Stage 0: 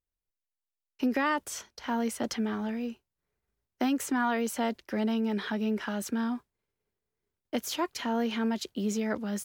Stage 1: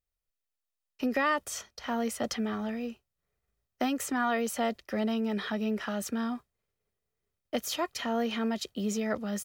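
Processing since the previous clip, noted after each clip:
comb filter 1.6 ms, depth 37%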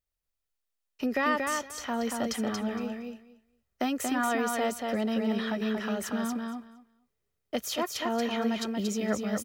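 repeating echo 232 ms, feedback 15%, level −4 dB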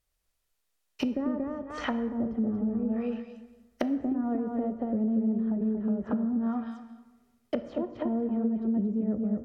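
treble cut that deepens with the level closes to 310 Hz, closed at −28.5 dBFS
downward compressor, threshold −34 dBFS, peak gain reduction 7.5 dB
dense smooth reverb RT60 1.3 s, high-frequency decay 0.55×, DRR 10.5 dB
level +8.5 dB

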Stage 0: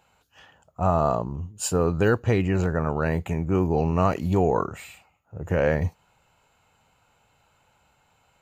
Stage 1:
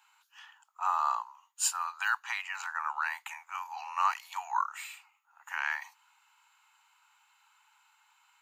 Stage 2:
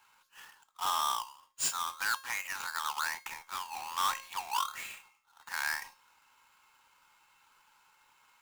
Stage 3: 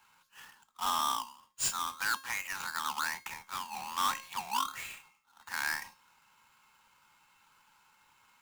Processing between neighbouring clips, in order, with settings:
Butterworth high-pass 870 Hz 72 dB per octave
each half-wave held at its own peak; tuned comb filter 540 Hz, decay 0.41 s, mix 70%; in parallel at −11 dB: sine wavefolder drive 8 dB, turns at −22.5 dBFS
sub-octave generator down 2 octaves, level +2 dB

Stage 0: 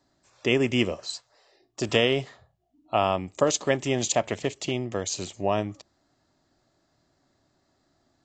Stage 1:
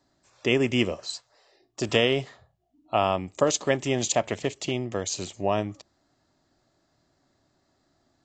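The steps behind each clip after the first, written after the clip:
no processing that can be heard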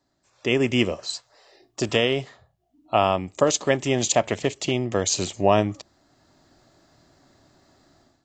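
automatic gain control gain up to 14.5 dB
level −3.5 dB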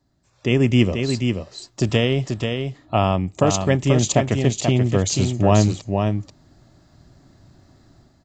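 bass and treble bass +13 dB, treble 0 dB
on a send: single-tap delay 485 ms −5.5 dB
on the sum: level −1 dB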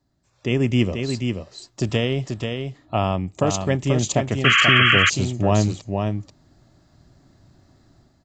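sound drawn into the spectrogram noise, 0:04.44–0:05.10, 1,100–3,300 Hz −13 dBFS
level −3 dB

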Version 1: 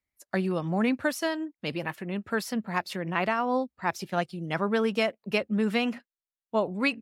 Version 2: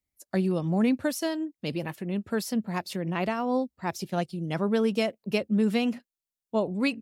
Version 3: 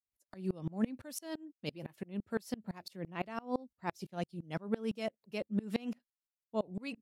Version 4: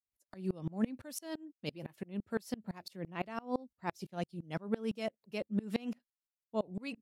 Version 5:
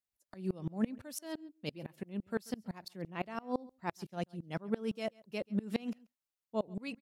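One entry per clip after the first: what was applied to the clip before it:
parametric band 1,500 Hz −10 dB 2.3 octaves; level +3.5 dB
tremolo with a ramp in dB swelling 5.9 Hz, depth 28 dB; level −3.5 dB
no processing that can be heard
single-tap delay 136 ms −24 dB

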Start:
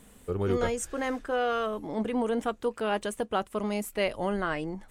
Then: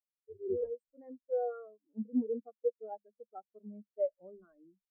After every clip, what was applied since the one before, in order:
mains-hum notches 50/100/150/200 Hz
every bin expanded away from the loudest bin 4 to 1
level −8 dB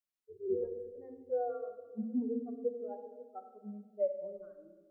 rectangular room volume 1,400 cubic metres, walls mixed, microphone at 0.98 metres
level −1 dB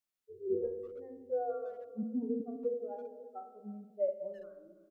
peak hold with a decay on every bin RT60 0.42 s
hum removal 81.47 Hz, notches 7
far-end echo of a speakerphone 330 ms, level −18 dB

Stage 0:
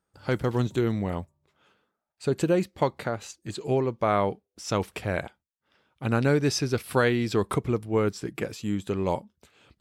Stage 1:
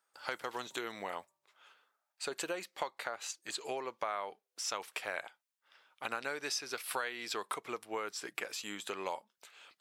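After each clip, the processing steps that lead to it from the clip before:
high-pass filter 870 Hz 12 dB per octave
downward compressor 4 to 1, threshold −39 dBFS, peak gain reduction 14.5 dB
level +3.5 dB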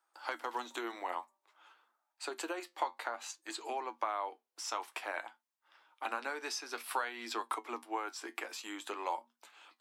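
flanger 0.54 Hz, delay 8.5 ms, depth 3.1 ms, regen +63%
Chebyshev high-pass with heavy ripple 230 Hz, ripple 9 dB
level +9.5 dB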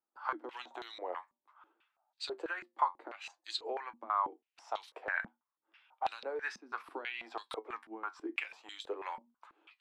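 band-pass on a step sequencer 6.1 Hz 210–3,900 Hz
level +9.5 dB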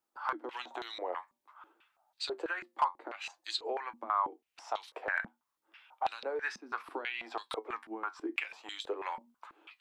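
in parallel at +1 dB: downward compressor, threshold −46 dBFS, peak gain reduction 20 dB
on the sum: hard clipping −18.5 dBFS, distortion −30 dB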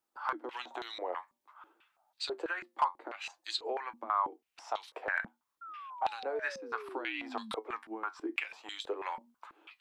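sound drawn into the spectrogram fall, 0:05.61–0:07.52, 210–1,400 Hz −46 dBFS

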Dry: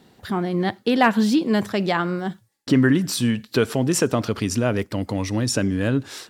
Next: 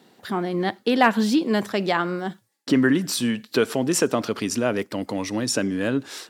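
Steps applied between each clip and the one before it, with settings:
high-pass filter 210 Hz 12 dB per octave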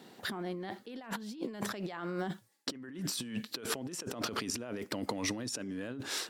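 compressor whose output falls as the input rises −32 dBFS, ratio −1
level −7.5 dB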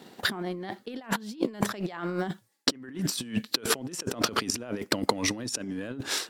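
transient designer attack +9 dB, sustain −4 dB
level +4 dB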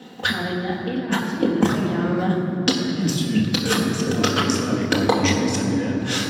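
convolution reverb RT60 3.5 s, pre-delay 3 ms, DRR −3.5 dB
level −3 dB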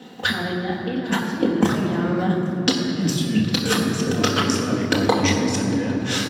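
single-tap delay 805 ms −20.5 dB

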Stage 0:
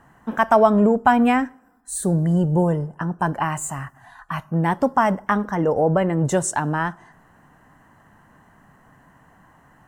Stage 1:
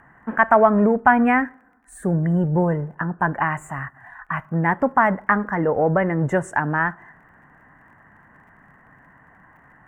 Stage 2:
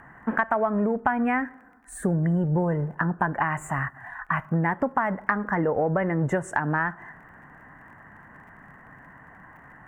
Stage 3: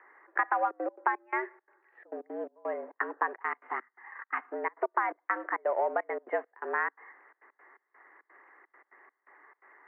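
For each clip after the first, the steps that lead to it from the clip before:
surface crackle 35 per second −41 dBFS; harmonic generator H 6 −43 dB, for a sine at −3.5 dBFS; high shelf with overshoot 2,800 Hz −13.5 dB, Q 3; level −1 dB
downward compressor 6 to 1, threshold −24 dBFS, peak gain reduction 14 dB; level +3 dB
gate pattern "xxx.xxxx.x.xx.." 170 BPM −24 dB; in parallel at −4 dB: slack as between gear wheels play −28 dBFS; on the sum: single-sideband voice off tune +110 Hz 280–2,400 Hz; level −8 dB

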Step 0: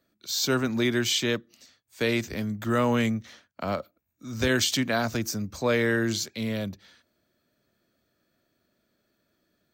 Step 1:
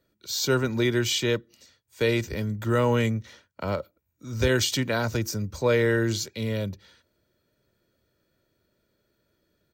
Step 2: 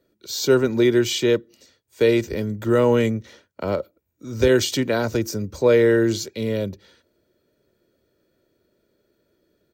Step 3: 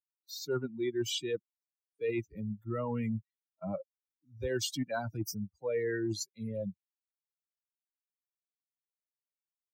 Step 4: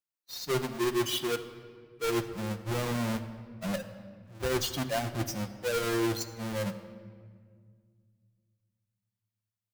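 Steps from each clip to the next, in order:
low-shelf EQ 370 Hz +6 dB; comb filter 2.1 ms, depth 45%; level −1.5 dB
drawn EQ curve 130 Hz 0 dB, 390 Hz +9 dB, 1,000 Hz +1 dB
spectral dynamics exaggerated over time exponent 3; reversed playback; downward compressor 6 to 1, threshold −31 dBFS, peak gain reduction 15.5 dB; reversed playback
each half-wave held at its own peak; rectangular room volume 3,300 cubic metres, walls mixed, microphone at 0.86 metres; level −1 dB

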